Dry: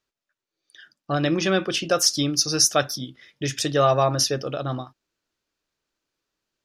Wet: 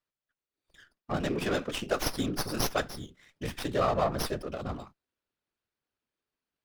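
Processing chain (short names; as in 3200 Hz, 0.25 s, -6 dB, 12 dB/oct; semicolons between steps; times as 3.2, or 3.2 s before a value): whisperiser; running maximum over 5 samples; gain -8 dB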